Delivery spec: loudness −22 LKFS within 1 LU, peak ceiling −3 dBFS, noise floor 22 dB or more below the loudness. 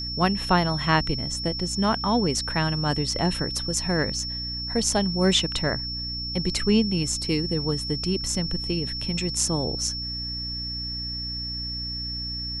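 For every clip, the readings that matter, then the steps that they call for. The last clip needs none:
mains hum 60 Hz; hum harmonics up to 300 Hz; level of the hum −34 dBFS; interfering tone 5,400 Hz; level of the tone −30 dBFS; integrated loudness −25.0 LKFS; sample peak −7.0 dBFS; target loudness −22.0 LKFS
→ hum removal 60 Hz, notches 5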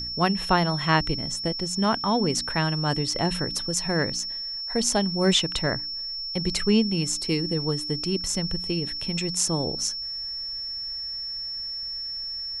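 mains hum none found; interfering tone 5,400 Hz; level of the tone −30 dBFS
→ notch filter 5,400 Hz, Q 30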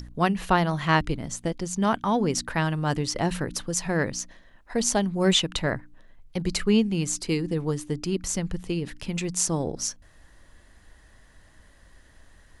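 interfering tone none found; integrated loudness −26.0 LKFS; sample peak −7.5 dBFS; target loudness −22.0 LKFS
→ level +4 dB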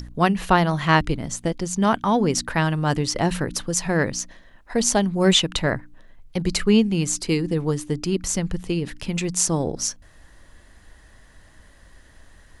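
integrated loudness −22.0 LKFS; sample peak −3.5 dBFS; background noise floor −51 dBFS

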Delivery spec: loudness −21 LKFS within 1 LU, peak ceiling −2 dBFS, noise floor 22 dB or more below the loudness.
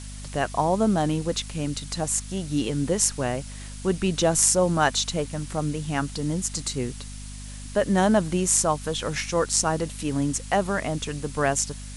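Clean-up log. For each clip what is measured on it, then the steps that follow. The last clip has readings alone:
mains hum 50 Hz; hum harmonics up to 250 Hz; level of the hum −36 dBFS; background noise floor −38 dBFS; target noise floor −47 dBFS; integrated loudness −24.5 LKFS; sample peak −1.5 dBFS; target loudness −21.0 LKFS
→ mains-hum notches 50/100/150/200/250 Hz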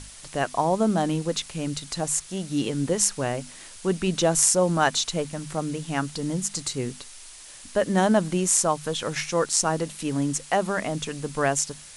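mains hum none found; background noise floor −45 dBFS; target noise floor −47 dBFS
→ noise reduction from a noise print 6 dB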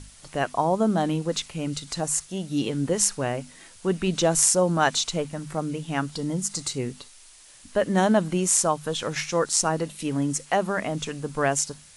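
background noise floor −50 dBFS; integrated loudness −25.0 LKFS; sample peak −1.5 dBFS; target loudness −21.0 LKFS
→ level +4 dB
brickwall limiter −2 dBFS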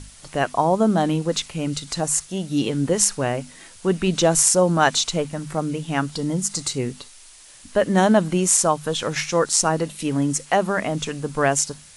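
integrated loudness −21.0 LKFS; sample peak −2.0 dBFS; background noise floor −46 dBFS

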